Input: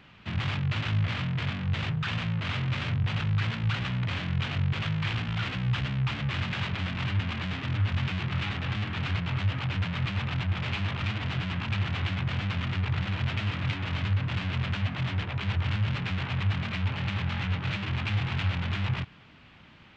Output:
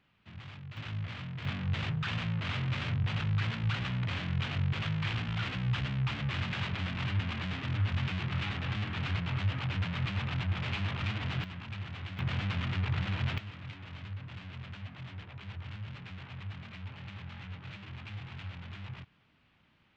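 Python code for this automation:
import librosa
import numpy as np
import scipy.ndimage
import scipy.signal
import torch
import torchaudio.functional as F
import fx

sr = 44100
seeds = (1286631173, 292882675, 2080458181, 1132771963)

y = fx.gain(x, sr, db=fx.steps((0.0, -17.0), (0.77, -10.5), (1.45, -3.5), (11.44, -11.5), (12.19, -3.0), (13.38, -14.5)))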